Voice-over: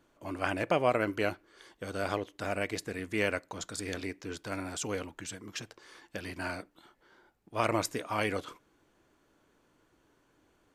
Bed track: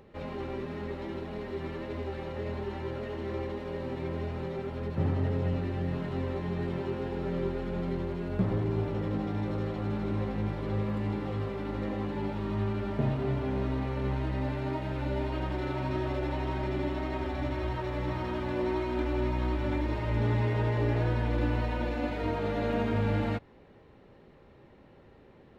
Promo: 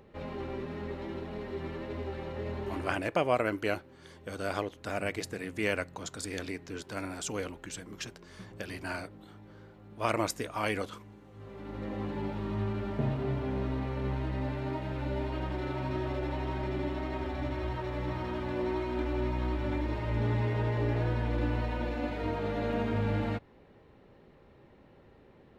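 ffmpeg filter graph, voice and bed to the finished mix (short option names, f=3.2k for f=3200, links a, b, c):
-filter_complex "[0:a]adelay=2450,volume=-0.5dB[a];[1:a]volume=17dB,afade=t=out:st=2.76:d=0.31:silence=0.112202,afade=t=in:st=11.33:d=0.73:silence=0.11885[b];[a][b]amix=inputs=2:normalize=0"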